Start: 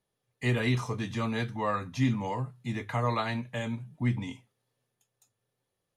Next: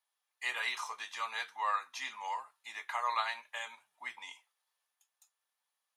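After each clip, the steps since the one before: Chebyshev high-pass 900 Hz, order 3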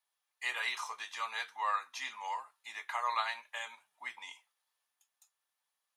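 low shelf 330 Hz -3 dB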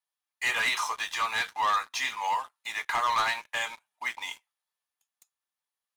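sample leveller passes 3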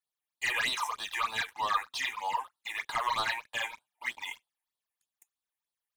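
phaser stages 8, 3.2 Hz, lowest notch 160–2200 Hz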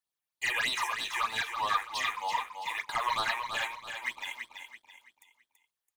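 feedback echo 0.332 s, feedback 36%, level -7 dB

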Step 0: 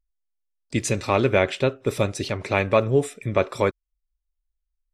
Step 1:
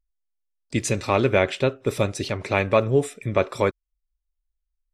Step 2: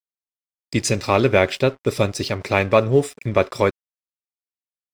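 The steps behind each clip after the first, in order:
nothing audible
bell 5000 Hz +9.5 dB 0.24 oct; crossover distortion -45 dBFS; gain +3.5 dB

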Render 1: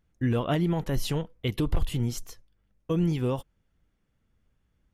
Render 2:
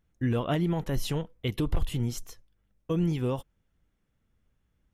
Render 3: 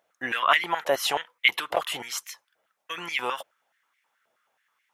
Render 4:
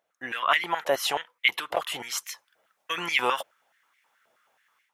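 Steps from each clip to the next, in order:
notch 4600 Hz, Q 19; gain -1.5 dB
dynamic EQ 2200 Hz, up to +4 dB, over -49 dBFS, Q 0.8; stepped high-pass 9.4 Hz 640–2100 Hz; gain +7.5 dB
AGC gain up to 10.5 dB; gain -5.5 dB

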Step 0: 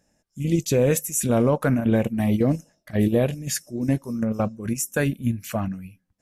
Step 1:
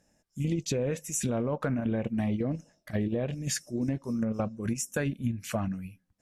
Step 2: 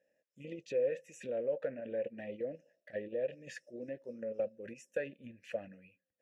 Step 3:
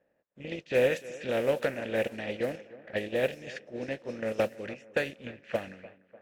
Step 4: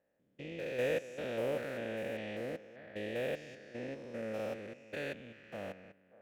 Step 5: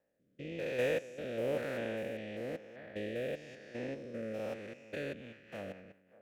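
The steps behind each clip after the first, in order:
treble ducked by the level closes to 3000 Hz, closed at -15 dBFS; limiter -13 dBFS, peak gain reduction 4 dB; compressor, threshold -24 dBFS, peak gain reduction 7 dB; gain -1.5 dB
vowel filter e; gain +3 dB
spectral contrast lowered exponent 0.56; tape echo 0.299 s, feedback 61%, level -17.5 dB, low-pass 5800 Hz; low-pass opened by the level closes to 1300 Hz, open at -33.5 dBFS; gain +7.5 dB
stepped spectrum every 0.2 s; gain -4.5 dB
rotary speaker horn 1 Hz, later 5.5 Hz, at 4.83; gain +2.5 dB

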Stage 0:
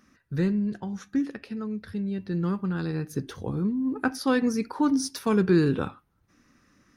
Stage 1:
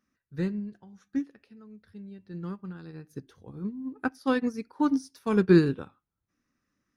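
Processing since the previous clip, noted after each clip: upward expander 2.5:1, over -31 dBFS; gain +3.5 dB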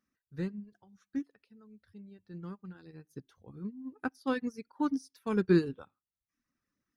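reverb removal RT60 0.65 s; gain -5.5 dB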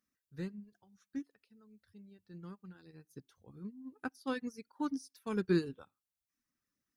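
high shelf 3800 Hz +8 dB; gain -5.5 dB

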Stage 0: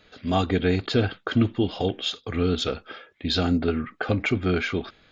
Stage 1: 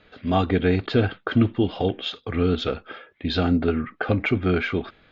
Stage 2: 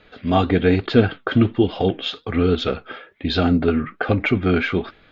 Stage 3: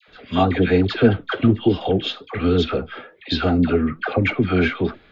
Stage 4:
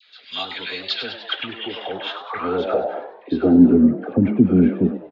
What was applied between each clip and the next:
LPF 3100 Hz 12 dB/oct; gain +2 dB
flange 1.2 Hz, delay 1.9 ms, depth 6.5 ms, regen +73%; gain +8 dB
dispersion lows, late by 82 ms, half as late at 940 Hz
frequency-shifting echo 99 ms, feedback 57%, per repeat +110 Hz, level -11.5 dB; band-pass sweep 4300 Hz -> 220 Hz, 1.14–3.83; gain +9 dB

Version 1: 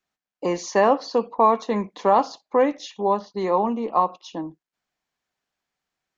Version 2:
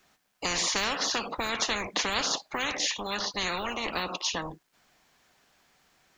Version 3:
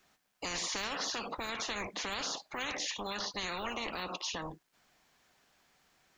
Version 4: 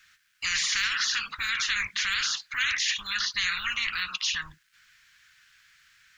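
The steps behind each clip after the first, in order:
spectral compressor 10:1; gain -8 dB
limiter -23 dBFS, peak gain reduction 9 dB; gain -4 dB
EQ curve 110 Hz 0 dB, 450 Hz -29 dB, 720 Hz -27 dB, 1500 Hz +11 dB, 15000 Hz +1 dB; gain +3.5 dB

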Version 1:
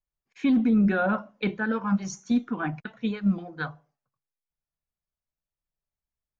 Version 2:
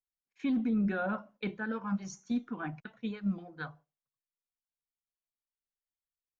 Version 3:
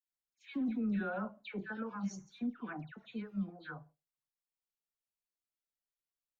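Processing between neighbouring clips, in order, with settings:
gate -49 dBFS, range -9 dB; gain -8.5 dB
dispersion lows, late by 0.117 s, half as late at 1900 Hz; gain -5 dB

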